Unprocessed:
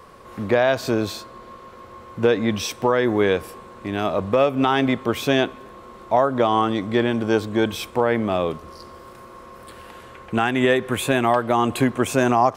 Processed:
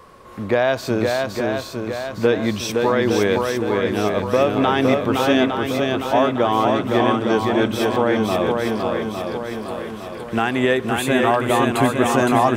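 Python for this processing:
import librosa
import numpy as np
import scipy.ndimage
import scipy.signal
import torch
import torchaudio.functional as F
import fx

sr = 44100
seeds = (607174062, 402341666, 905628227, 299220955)

y = fx.echo_swing(x, sr, ms=858, ratio=1.5, feedback_pct=49, wet_db=-3.5)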